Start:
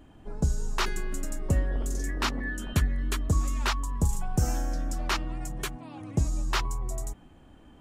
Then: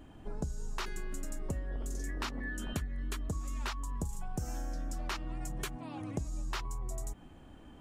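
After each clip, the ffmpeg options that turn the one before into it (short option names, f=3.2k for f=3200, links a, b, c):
-af "acompressor=threshold=-34dB:ratio=6"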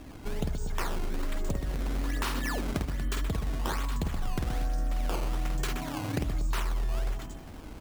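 -af "aecho=1:1:50|125|237.5|406.2|659.4:0.631|0.398|0.251|0.158|0.1,acrusher=samples=14:mix=1:aa=0.000001:lfo=1:lforange=22.4:lforate=1.2,acompressor=threshold=-32dB:ratio=6,volume=6.5dB"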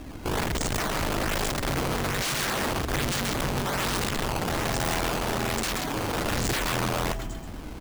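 -filter_complex "[0:a]asplit=2[a][b];[b]volume=25.5dB,asoftclip=hard,volume=-25.5dB,volume=-9.5dB[c];[a][c]amix=inputs=2:normalize=0,aecho=1:1:131:0.398,aeval=exprs='(mod(20*val(0)+1,2)-1)/20':c=same,volume=3dB"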